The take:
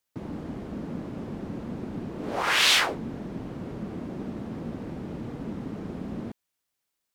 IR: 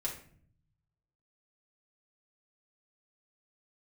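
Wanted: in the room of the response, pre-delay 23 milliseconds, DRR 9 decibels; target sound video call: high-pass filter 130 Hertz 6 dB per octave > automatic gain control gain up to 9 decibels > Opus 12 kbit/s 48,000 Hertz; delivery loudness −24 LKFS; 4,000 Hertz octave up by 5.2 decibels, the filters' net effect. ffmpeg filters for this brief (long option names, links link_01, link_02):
-filter_complex "[0:a]equalizer=frequency=4000:width_type=o:gain=6.5,asplit=2[link_01][link_02];[1:a]atrim=start_sample=2205,adelay=23[link_03];[link_02][link_03]afir=irnorm=-1:irlink=0,volume=-11dB[link_04];[link_01][link_04]amix=inputs=2:normalize=0,highpass=frequency=130:poles=1,dynaudnorm=maxgain=9dB,volume=-2.5dB" -ar 48000 -c:a libopus -b:a 12k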